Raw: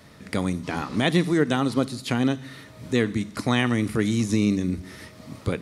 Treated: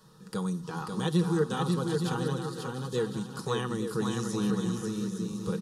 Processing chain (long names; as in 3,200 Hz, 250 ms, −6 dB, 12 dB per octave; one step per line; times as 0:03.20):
phaser with its sweep stopped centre 430 Hz, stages 8
comb filter 6.3 ms, depth 48%
bouncing-ball delay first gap 540 ms, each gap 0.6×, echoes 5
level −5.5 dB